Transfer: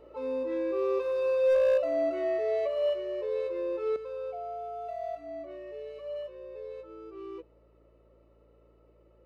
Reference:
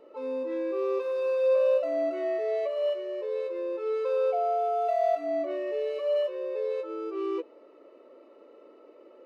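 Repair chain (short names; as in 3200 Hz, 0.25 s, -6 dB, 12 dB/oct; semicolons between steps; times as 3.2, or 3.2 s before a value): clip repair -19.5 dBFS; de-hum 56.4 Hz, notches 8; gain correction +11 dB, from 3.96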